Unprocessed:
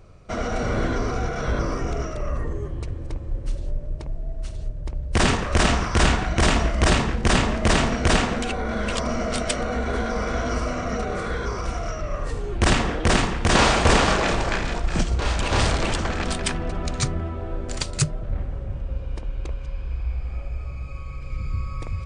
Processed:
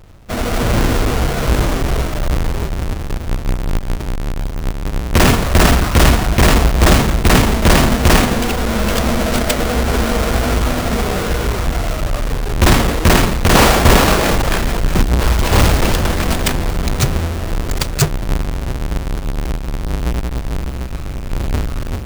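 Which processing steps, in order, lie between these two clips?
each half-wave held at its own peak
automatic gain control gain up to 3 dB
level +1.5 dB

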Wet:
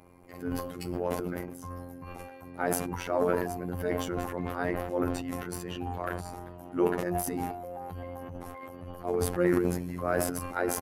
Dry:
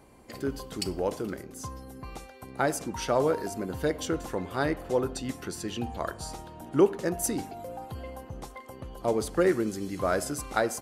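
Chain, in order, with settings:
flat-topped bell 5,300 Hz −10.5 dB
phases set to zero 88.4 Hz
transient designer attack −4 dB, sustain +11 dB
pitch-shifted copies added −12 semitones −17 dB

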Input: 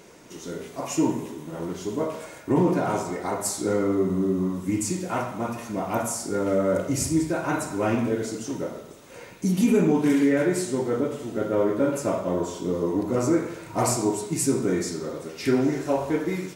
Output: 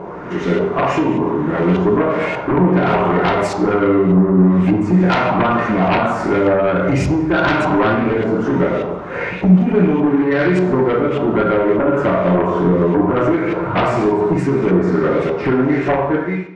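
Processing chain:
fade-out on the ending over 1.35 s
downward compressor 20 to 1, threshold −28 dBFS, peak gain reduction 13.5 dB
auto-filter low-pass saw up 1.7 Hz 890–2,700 Hz
sine wavefolder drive 9 dB, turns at −16.5 dBFS
on a send: convolution reverb RT60 0.70 s, pre-delay 3 ms, DRR 5 dB
on the sum: level +4.5 dB

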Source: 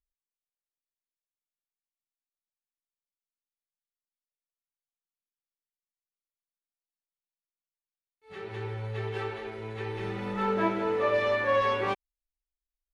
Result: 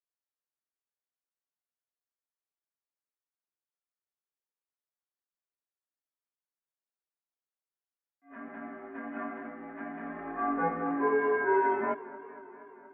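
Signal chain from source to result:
single-sideband voice off tune −160 Hz 450–2,000 Hz
feedback echo with a swinging delay time 237 ms, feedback 73%, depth 95 cents, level −19 dB

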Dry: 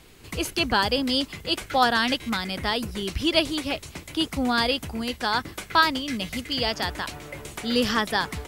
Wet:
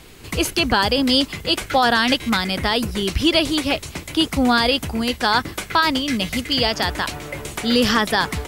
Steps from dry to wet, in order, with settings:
brickwall limiter −14 dBFS, peak gain reduction 8 dB
level +7.5 dB

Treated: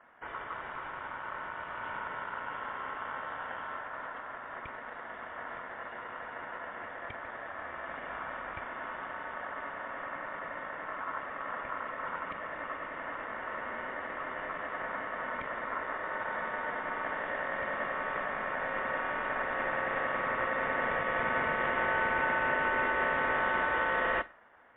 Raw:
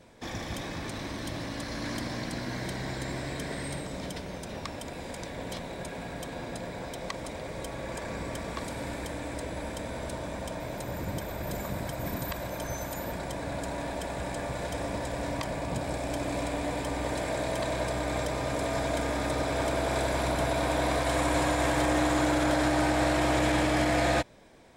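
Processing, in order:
low-pass filter 1,100 Hz 12 dB per octave
ring modulation 1,200 Hz
on a send at −19 dB: convolution reverb, pre-delay 47 ms
on the sum: MP3 32 kbit/s 8,000 Hz

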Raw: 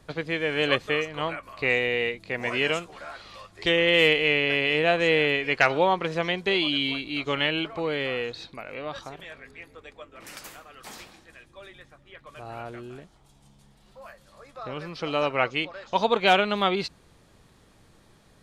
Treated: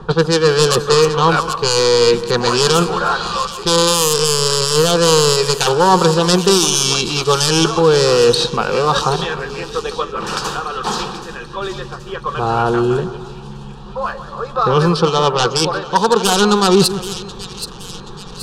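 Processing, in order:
phase distortion by the signal itself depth 0.3 ms
reversed playback
downward compressor 8 to 1, threshold −33 dBFS, peak gain reduction 17.5 dB
reversed playback
phaser with its sweep stopped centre 420 Hz, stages 8
low-pass that shuts in the quiet parts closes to 2,100 Hz, open at −34.5 dBFS
on a send: echo with a time of its own for lows and highs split 2,100 Hz, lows 157 ms, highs 777 ms, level −13 dB
on the sum: boost into a limiter +28.5 dB
level −1 dB

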